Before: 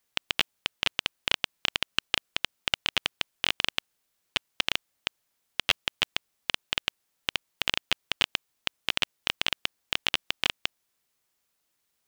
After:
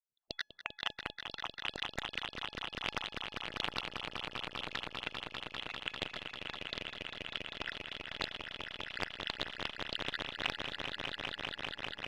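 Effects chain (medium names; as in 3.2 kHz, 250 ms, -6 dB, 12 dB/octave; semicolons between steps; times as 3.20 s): random holes in the spectrogram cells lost 56%; saturation -13 dBFS, distortion -15 dB; reverse; upward compressor, threshold -34 dBFS; reverse; low-pass 1.2 kHz 6 dB/octave; feedback comb 840 Hz, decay 0.36 s, mix 50%; level-controlled noise filter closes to 360 Hz, open at -45.5 dBFS; trance gate "..xx.xxxx.x" 146 bpm -12 dB; on a send: echo with a slow build-up 198 ms, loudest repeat 5, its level -7 dB; on the sum: loudspeaker Doppler distortion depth 0.89 ms; trim +8.5 dB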